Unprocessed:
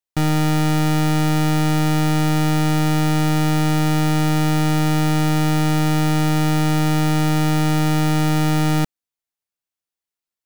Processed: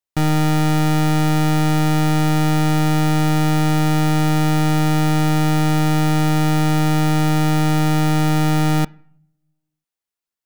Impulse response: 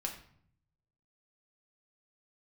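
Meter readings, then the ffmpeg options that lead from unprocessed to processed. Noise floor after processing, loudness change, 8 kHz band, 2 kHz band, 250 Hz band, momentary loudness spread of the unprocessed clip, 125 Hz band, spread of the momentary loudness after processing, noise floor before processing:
under -85 dBFS, +1.0 dB, 0.0 dB, +0.5 dB, +1.0 dB, 0 LU, +1.0 dB, 0 LU, under -85 dBFS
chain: -filter_complex "[0:a]asplit=2[a][b];[1:a]atrim=start_sample=2205,lowpass=2.7k,lowshelf=f=270:g=-9[c];[b][c]afir=irnorm=-1:irlink=0,volume=-14dB[d];[a][d]amix=inputs=2:normalize=0"

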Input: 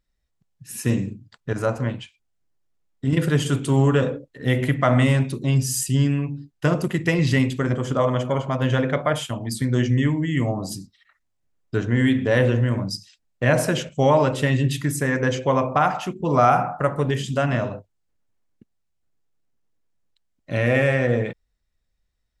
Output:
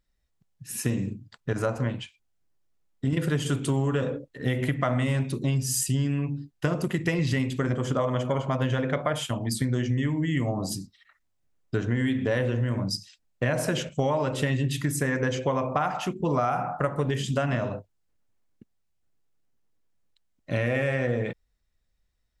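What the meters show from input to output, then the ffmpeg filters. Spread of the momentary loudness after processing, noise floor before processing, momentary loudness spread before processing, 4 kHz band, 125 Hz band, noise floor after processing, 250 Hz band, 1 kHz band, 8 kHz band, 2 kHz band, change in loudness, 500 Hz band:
7 LU, -73 dBFS, 10 LU, -3.5 dB, -5.5 dB, -73 dBFS, -5.5 dB, -7.0 dB, -2.0 dB, -6.0 dB, -5.5 dB, -6.0 dB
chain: -af "acompressor=threshold=-22dB:ratio=6"

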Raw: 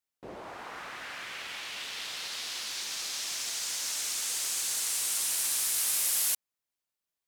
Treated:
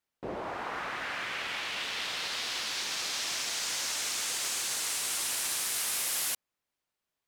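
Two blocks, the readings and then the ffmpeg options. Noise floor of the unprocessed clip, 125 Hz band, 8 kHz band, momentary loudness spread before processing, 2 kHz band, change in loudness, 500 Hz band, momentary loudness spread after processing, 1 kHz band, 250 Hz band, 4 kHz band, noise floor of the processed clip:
under -85 dBFS, n/a, -2.5 dB, 15 LU, +4.5 dB, -1.5 dB, +6.5 dB, 7 LU, +6.0 dB, +6.5 dB, +1.5 dB, under -85 dBFS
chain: -filter_complex "[0:a]asplit=2[a][b];[b]alimiter=level_in=0.5dB:limit=-24dB:level=0:latency=1:release=33,volume=-0.5dB,volume=1.5dB[c];[a][c]amix=inputs=2:normalize=0,highshelf=f=4.5k:g=-10"

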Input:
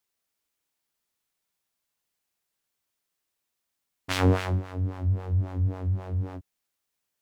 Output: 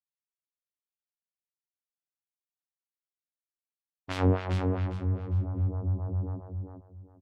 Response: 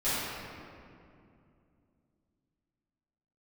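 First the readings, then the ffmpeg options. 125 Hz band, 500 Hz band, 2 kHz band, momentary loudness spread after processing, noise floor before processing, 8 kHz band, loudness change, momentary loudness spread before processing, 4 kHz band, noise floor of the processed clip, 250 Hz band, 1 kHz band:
-2.0 dB, -1.0 dB, -6.5 dB, 13 LU, -82 dBFS, under -10 dB, -2.5 dB, 11 LU, -8.0 dB, under -85 dBFS, -1.0 dB, -3.0 dB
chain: -af "afftdn=nr=26:nf=-47,firequalizer=gain_entry='entry(620,0);entry(1700,-5);entry(6300,-9)':delay=0.05:min_phase=1,aecho=1:1:404|808|1212:0.562|0.146|0.038,volume=-2.5dB"

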